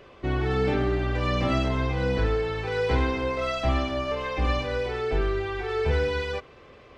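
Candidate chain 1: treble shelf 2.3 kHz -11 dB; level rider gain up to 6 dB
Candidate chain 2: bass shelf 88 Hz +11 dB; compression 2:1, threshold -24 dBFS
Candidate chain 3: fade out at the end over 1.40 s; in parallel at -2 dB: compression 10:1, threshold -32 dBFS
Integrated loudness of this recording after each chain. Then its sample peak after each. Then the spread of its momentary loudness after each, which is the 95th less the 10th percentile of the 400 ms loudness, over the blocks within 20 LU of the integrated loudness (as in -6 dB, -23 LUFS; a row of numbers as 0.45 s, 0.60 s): -21.5 LUFS, -27.0 LUFS, -25.0 LUFS; -6.5 dBFS, -13.5 dBFS, -10.5 dBFS; 5 LU, 3 LU, 4 LU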